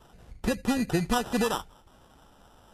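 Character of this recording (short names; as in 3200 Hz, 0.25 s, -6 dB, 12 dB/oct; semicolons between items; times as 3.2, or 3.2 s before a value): aliases and images of a low sample rate 2200 Hz, jitter 0%; Vorbis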